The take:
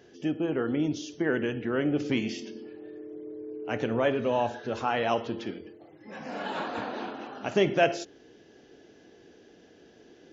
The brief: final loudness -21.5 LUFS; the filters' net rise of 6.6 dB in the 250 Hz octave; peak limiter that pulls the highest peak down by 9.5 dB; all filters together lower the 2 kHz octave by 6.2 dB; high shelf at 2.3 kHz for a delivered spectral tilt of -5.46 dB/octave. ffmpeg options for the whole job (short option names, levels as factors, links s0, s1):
-af "equalizer=f=250:t=o:g=8.5,equalizer=f=2000:t=o:g=-6,highshelf=f=2300:g=-5,volume=2.66,alimiter=limit=0.316:level=0:latency=1"